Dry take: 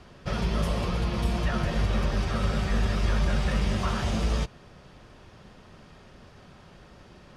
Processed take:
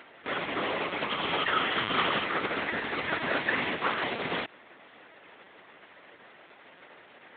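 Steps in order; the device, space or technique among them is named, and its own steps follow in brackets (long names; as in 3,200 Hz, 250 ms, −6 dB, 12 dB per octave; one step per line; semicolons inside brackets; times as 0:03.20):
0:01.10–0:02.25: thirty-one-band graphic EQ 100 Hz +11 dB, 1,250 Hz +8 dB, 3,150 Hz +11 dB
talking toy (linear-prediction vocoder at 8 kHz; high-pass filter 400 Hz 12 dB per octave; parametric band 2,000 Hz +8 dB 0.54 octaves)
level +1 dB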